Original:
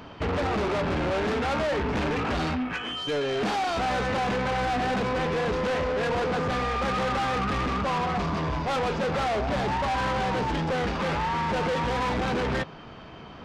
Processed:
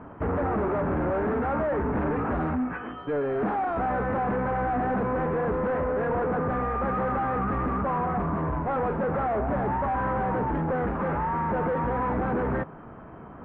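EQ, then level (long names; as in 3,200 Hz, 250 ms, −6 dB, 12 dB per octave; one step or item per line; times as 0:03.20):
low-pass filter 1,600 Hz 24 dB per octave
parametric band 270 Hz +2 dB
0.0 dB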